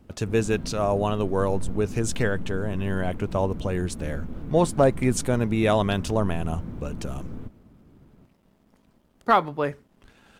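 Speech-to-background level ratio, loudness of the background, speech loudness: 12.5 dB, -38.0 LUFS, -25.5 LUFS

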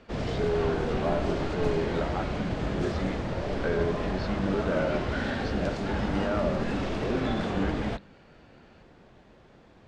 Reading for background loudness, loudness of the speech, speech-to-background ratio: -31.0 LUFS, -33.0 LUFS, -2.0 dB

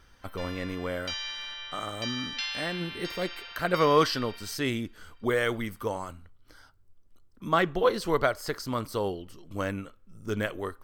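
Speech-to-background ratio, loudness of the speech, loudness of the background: 6.5 dB, -30.0 LUFS, -36.5 LUFS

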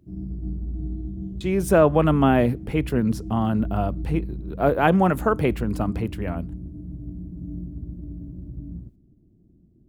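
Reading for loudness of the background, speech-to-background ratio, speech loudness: -34.5 LUFS, 12.0 dB, -22.5 LUFS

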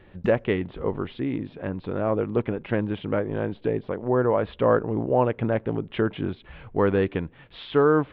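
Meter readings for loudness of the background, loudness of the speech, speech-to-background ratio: -38.5 LUFS, -25.5 LUFS, 13.0 dB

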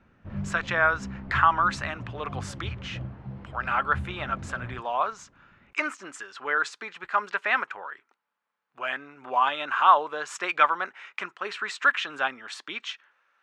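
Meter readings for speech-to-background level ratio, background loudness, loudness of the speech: 11.5 dB, -38.5 LUFS, -27.0 LUFS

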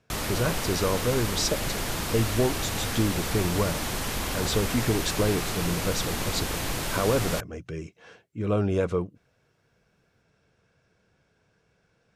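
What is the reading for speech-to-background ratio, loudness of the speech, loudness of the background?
0.5 dB, -29.0 LUFS, -29.5 LUFS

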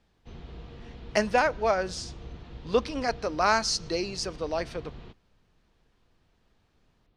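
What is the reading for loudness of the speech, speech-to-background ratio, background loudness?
-28.0 LUFS, 17.5 dB, -45.5 LUFS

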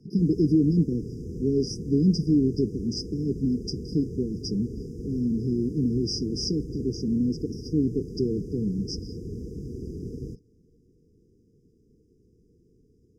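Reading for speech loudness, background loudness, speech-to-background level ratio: -27.0 LUFS, -37.5 LUFS, 10.5 dB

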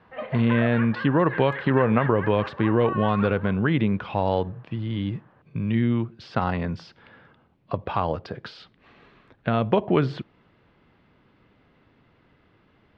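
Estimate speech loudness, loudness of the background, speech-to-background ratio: -24.0 LUFS, -34.5 LUFS, 10.5 dB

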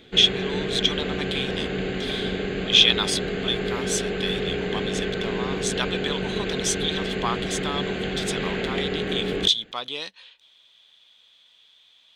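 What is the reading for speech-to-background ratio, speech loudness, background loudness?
2.5 dB, -25.5 LUFS, -28.0 LUFS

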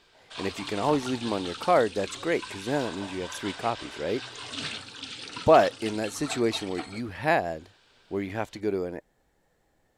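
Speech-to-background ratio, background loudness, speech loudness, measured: 10.0 dB, -38.0 LUFS, -28.0 LUFS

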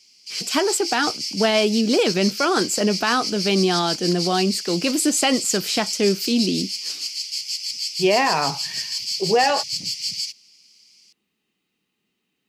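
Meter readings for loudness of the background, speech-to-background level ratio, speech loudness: -25.5 LUFS, 4.5 dB, -21.0 LUFS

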